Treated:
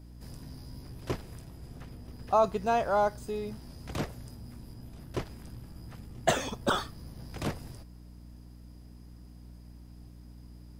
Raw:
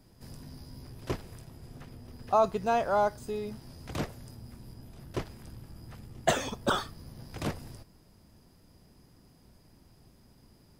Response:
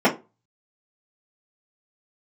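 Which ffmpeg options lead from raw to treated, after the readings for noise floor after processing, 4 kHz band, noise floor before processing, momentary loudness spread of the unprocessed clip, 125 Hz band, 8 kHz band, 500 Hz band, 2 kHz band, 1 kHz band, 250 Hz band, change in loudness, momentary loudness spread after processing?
−50 dBFS, 0.0 dB, −60 dBFS, 22 LU, +1.0 dB, 0.0 dB, 0.0 dB, 0.0 dB, 0.0 dB, 0.0 dB, 0.0 dB, 24 LU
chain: -af "aeval=exprs='val(0)+0.00398*(sin(2*PI*60*n/s)+sin(2*PI*2*60*n/s)/2+sin(2*PI*3*60*n/s)/3+sin(2*PI*4*60*n/s)/4+sin(2*PI*5*60*n/s)/5)':channel_layout=same"

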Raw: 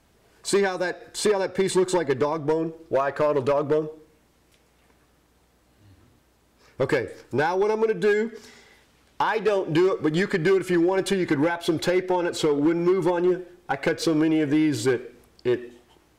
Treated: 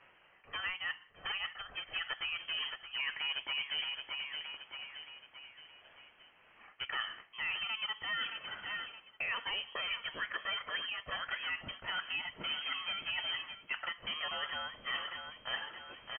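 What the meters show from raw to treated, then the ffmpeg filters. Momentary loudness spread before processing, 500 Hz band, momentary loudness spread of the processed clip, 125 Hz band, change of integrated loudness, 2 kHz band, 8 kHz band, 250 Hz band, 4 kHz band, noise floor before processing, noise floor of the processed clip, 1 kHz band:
6 LU, −32.5 dB, 10 LU, −29.0 dB, −14.0 dB, −5.5 dB, below −40 dB, −37.0 dB, +1.5 dB, −62 dBFS, −64 dBFS, −15.0 dB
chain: -filter_complex "[0:a]asplit=2[link_01][link_02];[link_02]aecho=0:1:622|1244|1866|2488:0.168|0.0789|0.0371|0.0174[link_03];[link_01][link_03]amix=inputs=2:normalize=0,crystalizer=i=6:c=0,agate=range=-33dB:threshold=-48dB:ratio=3:detection=peak,highpass=710,areverse,acompressor=threshold=-35dB:ratio=6,areverse,lowpass=frequency=3000:width_type=q:width=0.5098,lowpass=frequency=3000:width_type=q:width=0.6013,lowpass=frequency=3000:width_type=q:width=0.9,lowpass=frequency=3000:width_type=q:width=2.563,afreqshift=-3500,acompressor=mode=upward:threshold=-54dB:ratio=2.5"

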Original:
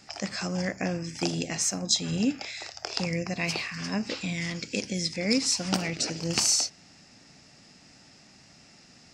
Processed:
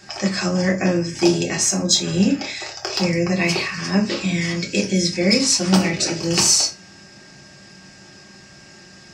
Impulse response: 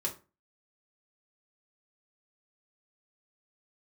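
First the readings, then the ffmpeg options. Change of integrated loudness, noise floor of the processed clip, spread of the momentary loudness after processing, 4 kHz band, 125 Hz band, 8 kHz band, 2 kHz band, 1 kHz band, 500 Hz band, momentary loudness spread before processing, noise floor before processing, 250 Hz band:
+9.5 dB, −45 dBFS, 7 LU, +8.5 dB, +10.5 dB, +8.5 dB, +9.0 dB, +9.0 dB, +11.5 dB, 8 LU, −55 dBFS, +11.0 dB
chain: -filter_complex "[0:a]aeval=exprs='val(0)+0.00126*sin(2*PI*1600*n/s)':channel_layout=same,acontrast=67[link_01];[1:a]atrim=start_sample=2205[link_02];[link_01][link_02]afir=irnorm=-1:irlink=0"

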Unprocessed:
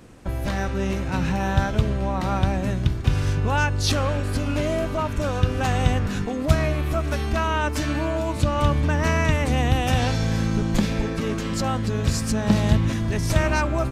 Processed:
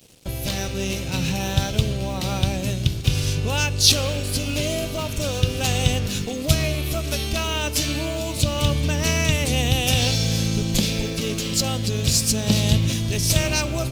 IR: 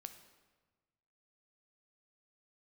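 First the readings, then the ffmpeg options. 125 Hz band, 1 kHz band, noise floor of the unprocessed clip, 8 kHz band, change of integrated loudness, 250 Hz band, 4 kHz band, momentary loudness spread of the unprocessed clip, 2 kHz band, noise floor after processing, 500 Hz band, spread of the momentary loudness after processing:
0.0 dB, −5.5 dB, −28 dBFS, +11.0 dB, +1.5 dB, −1.5 dB, +10.0 dB, 5 LU, 0.0 dB, −29 dBFS, −1.0 dB, 7 LU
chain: -filter_complex "[0:a]aeval=exprs='sgn(val(0))*max(abs(val(0))-0.00398,0)':channel_layout=same,aexciter=amount=6.9:drive=3.4:freq=2500,equalizer=frequency=125:width_type=o:width=1:gain=6,equalizer=frequency=500:width_type=o:width=1:gain=5,equalizer=frequency=1000:width_type=o:width=1:gain=-4,equalizer=frequency=8000:width_type=o:width=1:gain=-4,asplit=2[link_01][link_02];[1:a]atrim=start_sample=2205[link_03];[link_02][link_03]afir=irnorm=-1:irlink=0,volume=0.5dB[link_04];[link_01][link_04]amix=inputs=2:normalize=0,volume=-7.5dB"

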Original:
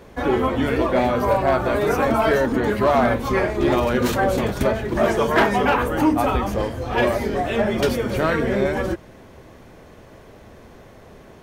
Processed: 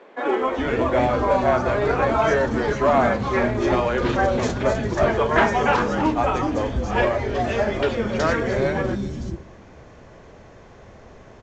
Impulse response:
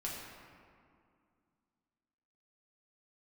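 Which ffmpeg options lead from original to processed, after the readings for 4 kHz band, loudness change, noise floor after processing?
−2.5 dB, −1.0 dB, −46 dBFS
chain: -filter_complex "[0:a]acrossover=split=280|3800[link_01][link_02][link_03];[link_03]adelay=370[link_04];[link_01]adelay=410[link_05];[link_05][link_02][link_04]amix=inputs=3:normalize=0,asplit=2[link_06][link_07];[1:a]atrim=start_sample=2205,asetrate=52920,aresample=44100,adelay=34[link_08];[link_07][link_08]afir=irnorm=-1:irlink=0,volume=-17dB[link_09];[link_06][link_09]amix=inputs=2:normalize=0" -ar 16000 -c:a pcm_mulaw

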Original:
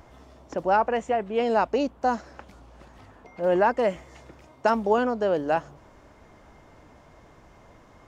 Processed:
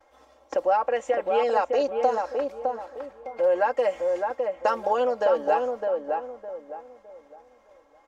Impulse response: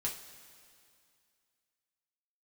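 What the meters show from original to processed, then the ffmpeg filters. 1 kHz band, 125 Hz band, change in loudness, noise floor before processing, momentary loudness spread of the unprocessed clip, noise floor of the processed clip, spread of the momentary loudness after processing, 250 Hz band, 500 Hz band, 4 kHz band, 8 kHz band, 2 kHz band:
+0.5 dB, below −15 dB, −0.5 dB, −54 dBFS, 7 LU, −59 dBFS, 15 LU, −8.5 dB, +2.5 dB, −1.0 dB, can't be measured, −2.5 dB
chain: -filter_complex "[0:a]agate=range=-33dB:threshold=-42dB:ratio=3:detection=peak,lowshelf=frequency=320:width_type=q:width=1.5:gain=-14,aecho=1:1:3.7:0.81,acompressor=threshold=-27dB:ratio=2.5,asplit=2[link_01][link_02];[link_02]adelay=610,lowpass=frequency=1200:poles=1,volume=-3dB,asplit=2[link_03][link_04];[link_04]adelay=610,lowpass=frequency=1200:poles=1,volume=0.34,asplit=2[link_05][link_06];[link_06]adelay=610,lowpass=frequency=1200:poles=1,volume=0.34,asplit=2[link_07][link_08];[link_08]adelay=610,lowpass=frequency=1200:poles=1,volume=0.34[link_09];[link_03][link_05][link_07][link_09]amix=inputs=4:normalize=0[link_10];[link_01][link_10]amix=inputs=2:normalize=0,volume=3.5dB"

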